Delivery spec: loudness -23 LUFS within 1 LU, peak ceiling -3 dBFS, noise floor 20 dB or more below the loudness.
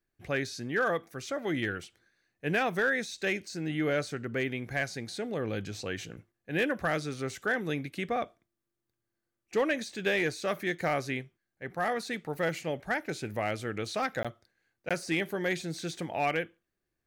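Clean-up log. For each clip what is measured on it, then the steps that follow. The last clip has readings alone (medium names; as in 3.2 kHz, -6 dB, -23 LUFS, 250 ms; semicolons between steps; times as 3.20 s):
clipped samples 0.1%; clipping level -20.5 dBFS; dropouts 2; longest dropout 16 ms; loudness -32.5 LUFS; peak level -20.5 dBFS; loudness target -23.0 LUFS
-> clip repair -20.5 dBFS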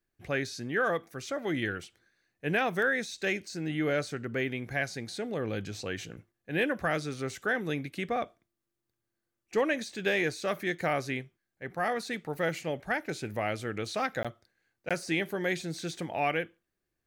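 clipped samples 0.0%; dropouts 2; longest dropout 16 ms
-> interpolate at 14.23/14.89 s, 16 ms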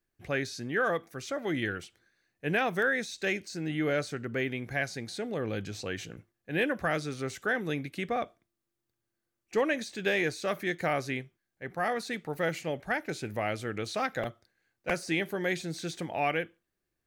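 dropouts 0; loudness -32.0 LUFS; peak level -17.0 dBFS; loudness target -23.0 LUFS
-> trim +9 dB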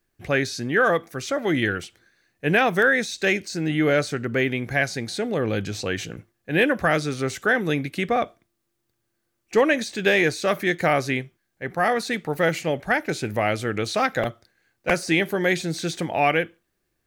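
loudness -23.0 LUFS; peak level -8.0 dBFS; noise floor -76 dBFS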